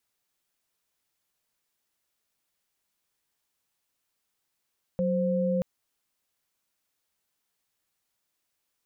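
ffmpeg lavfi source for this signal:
ffmpeg -f lavfi -i "aevalsrc='0.0501*(sin(2*PI*185*t)+sin(2*PI*523.25*t))':duration=0.63:sample_rate=44100" out.wav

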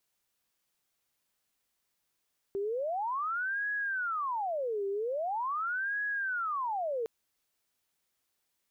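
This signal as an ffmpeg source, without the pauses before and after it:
ffmpeg -f lavfi -i "aevalsrc='0.0316*sin(2*PI*(1032*t-638/(2*PI*0.43)*sin(2*PI*0.43*t)))':duration=4.51:sample_rate=44100" out.wav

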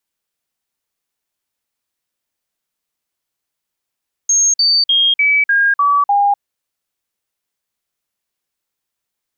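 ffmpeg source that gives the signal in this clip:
ffmpeg -f lavfi -i "aevalsrc='0.335*clip(min(mod(t,0.3),0.25-mod(t,0.3))/0.005,0,1)*sin(2*PI*6480*pow(2,-floor(t/0.3)/2)*mod(t,0.3))':duration=2.1:sample_rate=44100" out.wav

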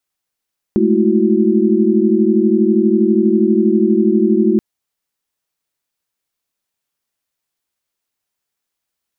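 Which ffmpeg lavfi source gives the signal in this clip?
ffmpeg -f lavfi -i "aevalsrc='0.168*(sin(2*PI*207.65*t)+sin(2*PI*220*t)+sin(2*PI*329.63*t)+sin(2*PI*369.99*t))':duration=3.83:sample_rate=44100" out.wav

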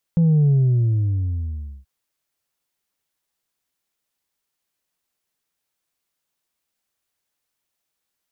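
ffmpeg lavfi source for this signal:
ffmpeg -f lavfi -i "aevalsrc='0.224*clip((1.68-t)/1.36,0,1)*tanh(1.26*sin(2*PI*170*1.68/log(65/170)*(exp(log(65/170)*t/1.68)-1)))/tanh(1.26)':duration=1.68:sample_rate=44100" out.wav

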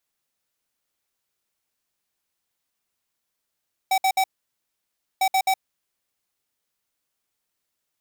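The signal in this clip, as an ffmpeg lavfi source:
ffmpeg -f lavfi -i "aevalsrc='0.106*(2*lt(mod(764*t,1),0.5)-1)*clip(min(mod(mod(t,1.3),0.13),0.07-mod(mod(t,1.3),0.13))/0.005,0,1)*lt(mod(t,1.3),0.39)':duration=2.6:sample_rate=44100" out.wav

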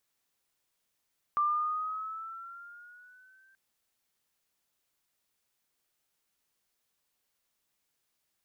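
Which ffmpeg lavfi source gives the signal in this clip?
ffmpeg -f lavfi -i "aevalsrc='pow(10,(-23.5-37*t/2.18)/20)*sin(2*PI*1180*2.18/(5*log(2)/12)*(exp(5*log(2)/12*t/2.18)-1))':duration=2.18:sample_rate=44100" out.wav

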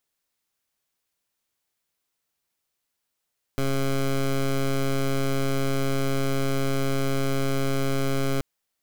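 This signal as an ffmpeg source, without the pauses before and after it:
ffmpeg -f lavfi -i "aevalsrc='0.0668*(2*lt(mod(136*t,1),0.15)-1)':duration=4.83:sample_rate=44100" out.wav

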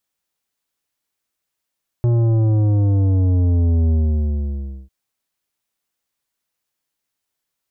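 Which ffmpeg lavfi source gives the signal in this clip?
ffmpeg -f lavfi -i "aevalsrc='0.2*clip((2.85-t)/0.98,0,1)*tanh(3.35*sin(2*PI*120*2.85/log(65/120)*(exp(log(65/120)*t/2.85)-1)))/tanh(3.35)':duration=2.85:sample_rate=44100" out.wav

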